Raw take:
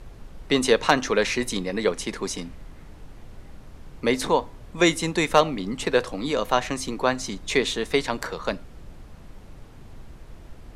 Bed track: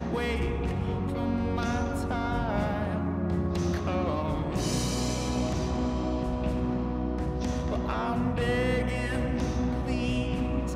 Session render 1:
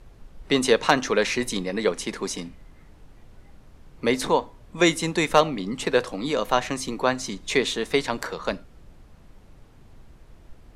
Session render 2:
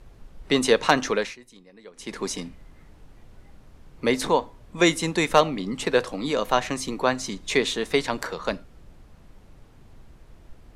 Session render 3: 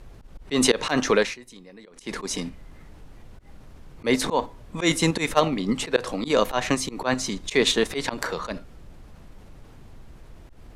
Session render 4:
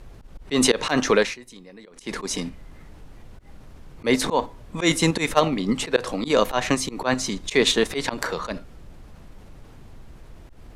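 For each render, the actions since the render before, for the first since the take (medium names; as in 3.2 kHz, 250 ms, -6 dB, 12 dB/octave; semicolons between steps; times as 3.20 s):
noise print and reduce 6 dB
1.09–2.21 s: dip -23 dB, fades 0.28 s
in parallel at +3 dB: level held to a coarse grid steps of 14 dB; on the sum: slow attack 109 ms
trim +1.5 dB; peak limiter -3 dBFS, peak gain reduction 1.5 dB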